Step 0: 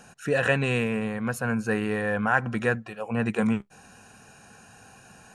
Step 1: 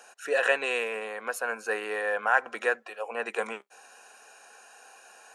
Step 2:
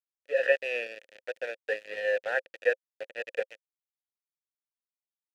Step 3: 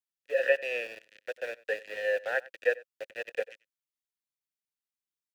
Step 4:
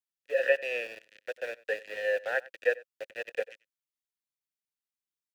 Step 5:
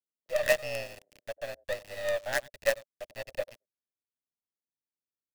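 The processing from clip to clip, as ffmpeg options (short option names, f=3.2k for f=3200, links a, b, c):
-af "highpass=f=440:w=0.5412,highpass=f=440:w=1.3066"
-filter_complex "[0:a]aeval=exprs='val(0)*gte(abs(val(0)),0.0447)':c=same,asplit=3[a][b][c];[a]bandpass=f=530:t=q:w=8,volume=0dB[d];[b]bandpass=f=1.84k:t=q:w=8,volume=-6dB[e];[c]bandpass=f=2.48k:t=q:w=8,volume=-9dB[f];[d][e][f]amix=inputs=3:normalize=0,dynaudnorm=f=110:g=7:m=10dB,volume=-2.5dB"
-filter_complex "[0:a]acrossover=split=410|1100[a][b][c];[b]aeval=exprs='val(0)*gte(abs(val(0)),0.00447)':c=same[d];[a][d][c]amix=inputs=3:normalize=0,asplit=2[e][f];[f]adelay=93.29,volume=-21dB,highshelf=f=4k:g=-2.1[g];[e][g]amix=inputs=2:normalize=0,volume=-1dB"
-af anull
-filter_complex "[0:a]afreqshift=68,acrossover=split=450|680[a][b][c];[c]acrusher=bits=5:dc=4:mix=0:aa=0.000001[d];[a][b][d]amix=inputs=3:normalize=0"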